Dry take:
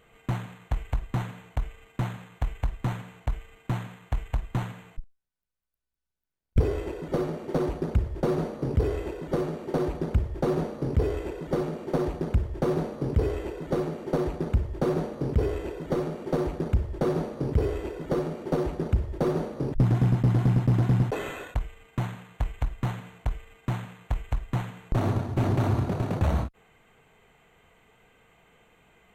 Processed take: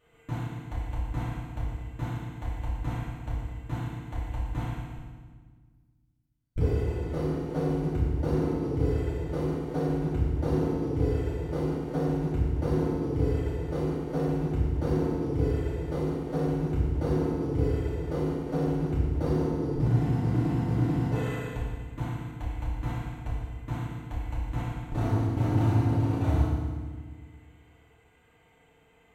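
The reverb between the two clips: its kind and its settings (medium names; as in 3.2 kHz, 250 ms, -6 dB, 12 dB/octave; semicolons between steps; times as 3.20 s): FDN reverb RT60 1.5 s, low-frequency decay 1.5×, high-frequency decay 0.9×, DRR -8.5 dB; trim -12 dB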